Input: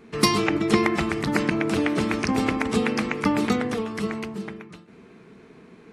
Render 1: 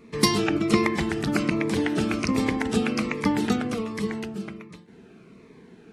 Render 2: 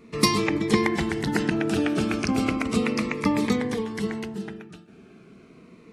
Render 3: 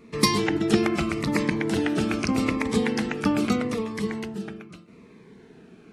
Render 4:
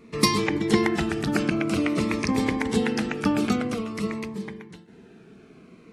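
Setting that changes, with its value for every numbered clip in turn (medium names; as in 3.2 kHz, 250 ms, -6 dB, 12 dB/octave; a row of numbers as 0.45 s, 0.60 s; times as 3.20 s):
Shepard-style phaser, rate: 1.3 Hz, 0.34 Hz, 0.81 Hz, 0.5 Hz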